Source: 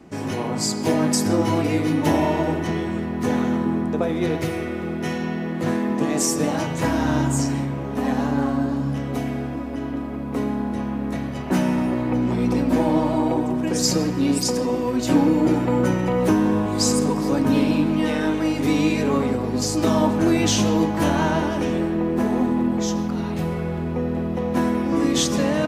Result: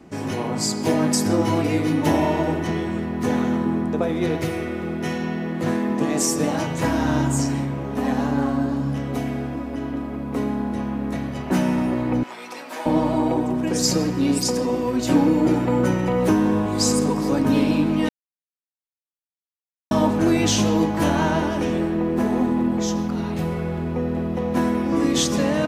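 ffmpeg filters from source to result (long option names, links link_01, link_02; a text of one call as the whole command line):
ffmpeg -i in.wav -filter_complex "[0:a]asettb=1/sr,asplit=3[link_01][link_02][link_03];[link_01]atrim=end=12.234[link_04];[link_02]atrim=start=12.23:end=12.86,asetpts=PTS-STARTPTS,afade=type=in:duration=0.004:curve=qsin,afade=type=out:start_time=0.626:duration=0.004:curve=qsin,highpass=1000[link_05];[link_03]atrim=start=12.856[link_06];[link_04][link_05]acrossfade=duration=0.004:curve1=hsin:curve2=qsin[link_07];[link_07][link_06]acrossfade=duration=0.004:curve1=qsin:curve2=hsin,asplit=3[link_08][link_09][link_10];[link_08]atrim=end=18.09,asetpts=PTS-STARTPTS,afade=type=out:start_time=18.086:duration=0.004:curve=hsin[link_11];[link_09]atrim=start=18.09:end=19.91,asetpts=PTS-STARTPTS,volume=0[link_12];[link_10]atrim=start=19.91,asetpts=PTS-STARTPTS,afade=type=in:duration=0.004:curve=hsin[link_13];[link_11][link_12][link_13]concat=n=3:v=0:a=1" out.wav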